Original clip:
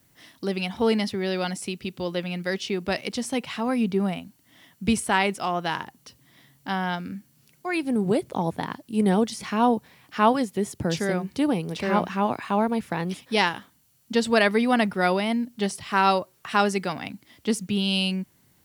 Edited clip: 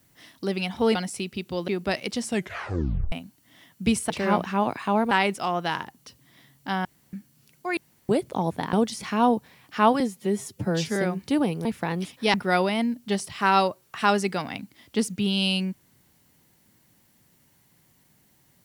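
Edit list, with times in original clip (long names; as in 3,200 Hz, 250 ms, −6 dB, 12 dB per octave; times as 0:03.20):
0:00.95–0:01.43: remove
0:02.16–0:02.69: remove
0:03.23: tape stop 0.90 s
0:06.85–0:07.13: fill with room tone
0:07.77–0:08.09: fill with room tone
0:08.73–0:09.13: remove
0:10.40–0:11.04: time-stretch 1.5×
0:11.73–0:12.74: move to 0:05.11
0:13.43–0:14.85: remove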